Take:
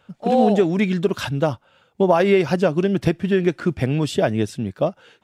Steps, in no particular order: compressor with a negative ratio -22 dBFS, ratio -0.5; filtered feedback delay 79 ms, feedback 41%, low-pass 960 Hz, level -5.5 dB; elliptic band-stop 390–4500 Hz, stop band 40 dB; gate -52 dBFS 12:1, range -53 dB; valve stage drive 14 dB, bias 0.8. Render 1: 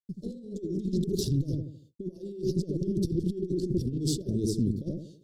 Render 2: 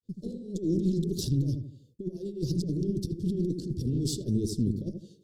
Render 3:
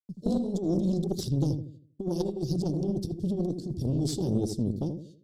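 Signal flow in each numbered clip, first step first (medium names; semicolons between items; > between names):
filtered feedback delay > compressor with a negative ratio > valve stage > gate > elliptic band-stop; compressor with a negative ratio > filtered feedback delay > gate > valve stage > elliptic band-stop; elliptic band-stop > compressor with a negative ratio > gate > filtered feedback delay > valve stage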